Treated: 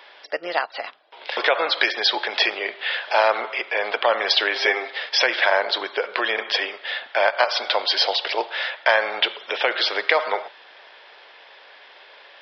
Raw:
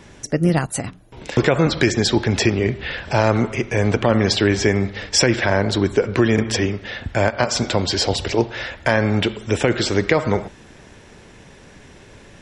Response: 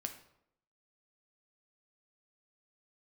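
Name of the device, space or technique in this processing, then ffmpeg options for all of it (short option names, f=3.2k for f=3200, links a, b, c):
musical greeting card: -filter_complex "[0:a]aresample=11025,aresample=44100,highpass=f=600:w=0.5412,highpass=f=600:w=1.3066,equalizer=f=3.3k:t=o:w=0.2:g=5.5,asettb=1/sr,asplit=3[a][b][c];[a]atrim=end=4.554[d];[b]atrim=start=4.55:end=4.97,asetpts=PTS-STARTPTS,afade=t=in:d=0.004:c=qsin,afade=t=out:st=0.416:d=0.004:c=qsin,aecho=1:1:7.5:0.8,atrim=end_sample=18522[e];[c]atrim=start=4.966[f];[d][e]acrossfade=d=0.004:c1=hsin:c2=qsin[g];[g][f]acrossfade=d=0.004:c1=qsin:c2=hsin,volume=2.5dB"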